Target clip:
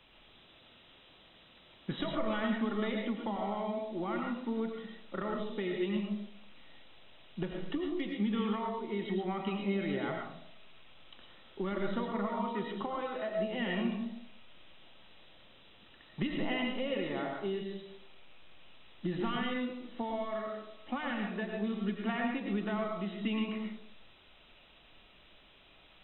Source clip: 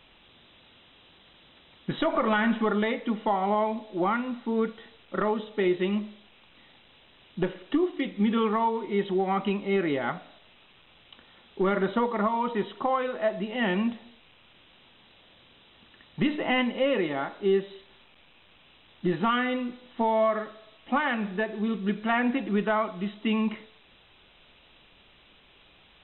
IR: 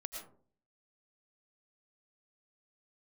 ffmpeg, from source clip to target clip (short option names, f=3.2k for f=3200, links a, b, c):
-filter_complex "[0:a]acrossover=split=200|3000[a][b][c];[b]acompressor=threshold=-31dB:ratio=6[d];[a][d][c]amix=inputs=3:normalize=0[e];[1:a]atrim=start_sample=2205[f];[e][f]afir=irnorm=-1:irlink=0,volume=-1dB"